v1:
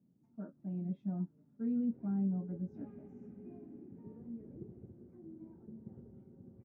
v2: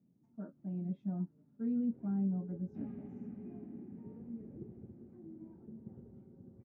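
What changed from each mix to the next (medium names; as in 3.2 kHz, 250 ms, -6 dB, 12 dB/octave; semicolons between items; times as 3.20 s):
second sound +7.5 dB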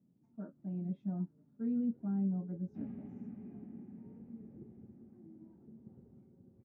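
first sound -6.0 dB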